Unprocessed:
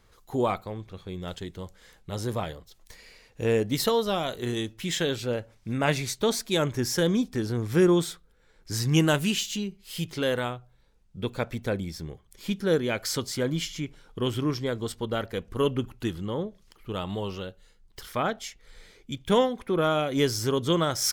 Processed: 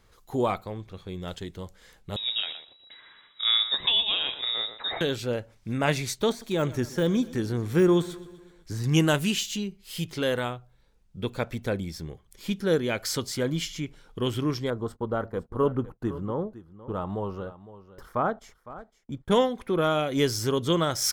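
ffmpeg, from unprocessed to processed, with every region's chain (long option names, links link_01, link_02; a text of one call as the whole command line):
ffmpeg -i in.wav -filter_complex "[0:a]asettb=1/sr,asplit=3[link_01][link_02][link_03];[link_01]atrim=end=2.164[link_04];[link_02]atrim=start=2.16:end=5.01,asetpts=PTS-STARTPTS,afade=type=in:duration=0.004:curve=qsin,afade=type=out:start_time=2.846:duration=0.004:curve=qsin,lowpass=frequency=3300:width_type=q:width=0.5098,lowpass=frequency=3300:width_type=q:width=0.6013,lowpass=frequency=3300:width_type=q:width=0.9,lowpass=frequency=3300:width_type=q:width=2.563,afreqshift=-3900,asplit=2[link_05][link_06];[link_06]adelay=118,lowpass=frequency=1300:poles=1,volume=-6dB,asplit=2[link_07][link_08];[link_08]adelay=118,lowpass=frequency=1300:poles=1,volume=0.2,asplit=2[link_09][link_10];[link_10]adelay=118,lowpass=frequency=1300:poles=1,volume=0.2[link_11];[link_05][link_07][link_09][link_11]amix=inputs=4:normalize=0,atrim=end_sample=125685[link_12];[link_03]atrim=start=5.006[link_13];[link_04][link_12]acrossfade=duration=0.004:curve1=hsin:curve2=qsin[link_14];[link_14][link_13]acrossfade=duration=0.004:curve1=qsin:curve2=hsin,asettb=1/sr,asplit=3[link_15][link_16][link_17];[link_15]atrim=end=6.294[link_18];[link_16]atrim=start=6.29:end=8.84,asetpts=PTS-STARTPTS,afade=type=in:duration=0.004:curve=qsin,afade=type=out:start_time=2.546:duration=0.004:curve=qsin,deesser=0.9,bandreject=frequency=5100:width=12,aecho=1:1:125|250|375|500|625:0.112|0.064|0.0365|0.0208|0.0118,atrim=end_sample=112455[link_19];[link_17]atrim=start=8.836[link_20];[link_18][link_19]acrossfade=duration=0.004:curve1=hsin:curve2=qsin[link_21];[link_21][link_20]acrossfade=duration=0.004:curve1=qsin:curve2=hsin,asettb=1/sr,asplit=3[link_22][link_23][link_24];[link_22]atrim=end=14.704[link_25];[link_23]atrim=start=14.7:end=19.31,asetpts=PTS-STARTPTS,afade=type=in:duration=0.004:curve=qsin,afade=type=out:start_time=4.606:duration=0.004:curve=qsin,agate=range=-23dB:threshold=-47dB:ratio=16:release=100:detection=peak,highshelf=frequency=1800:width_type=q:width=1.5:gain=-13.5,aecho=1:1:509:0.158,atrim=end_sample=203301[link_26];[link_24]atrim=start=19.306[link_27];[link_25][link_26]acrossfade=duration=0.004:curve1=hsin:curve2=qsin[link_28];[link_28][link_27]acrossfade=duration=0.004:curve1=qsin:curve2=hsin" out.wav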